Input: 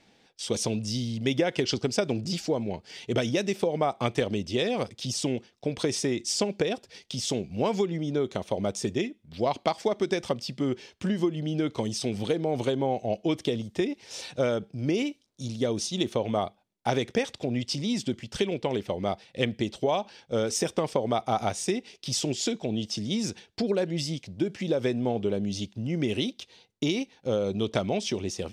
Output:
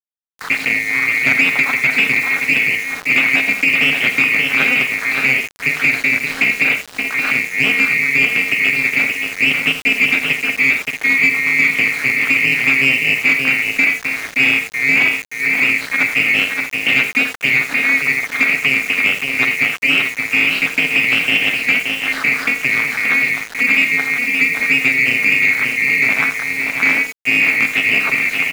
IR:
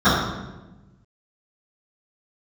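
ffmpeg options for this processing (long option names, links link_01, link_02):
-af "afftfilt=real='real(if(lt(b,920),b+92*(1-2*mod(floor(b/92),2)),b),0)':imag='imag(if(lt(b,920),b+92*(1-2*mod(floor(b/92),2)),b),0)':win_size=2048:overlap=0.75,acontrast=62,aeval=exprs='0.668*(cos(1*acos(clip(val(0)/0.668,-1,1)))-cos(1*PI/2))+0.0106*(cos(4*acos(clip(val(0)/0.668,-1,1)))-cos(4*PI/2))+0.237*(cos(5*acos(clip(val(0)/0.668,-1,1)))-cos(5*PI/2))+0.237*(cos(6*acos(clip(val(0)/0.668,-1,1)))-cos(6*PI/2))':channel_layout=same,aeval=exprs='val(0)+0.00794*sin(2*PI*450*n/s)':channel_layout=same,tremolo=f=270:d=0.974,highpass=frequency=160:width=0.5412,highpass=frequency=160:width=1.3066,equalizer=frequency=190:width_type=q:width=4:gain=-7,equalizer=frequency=350:width_type=q:width=4:gain=-9,equalizer=frequency=560:width_type=q:width=4:gain=-5,equalizer=frequency=940:width_type=q:width=4:gain=-6,lowpass=frequency=3000:width=0.5412,lowpass=frequency=3000:width=1.3066,aecho=1:1:44|49|82|102|575|631:0.133|0.141|0.237|0.112|0.531|0.266,aeval=exprs='val(0)*gte(abs(val(0)),0.0335)':channel_layout=same,acontrast=22,volume=-1.5dB"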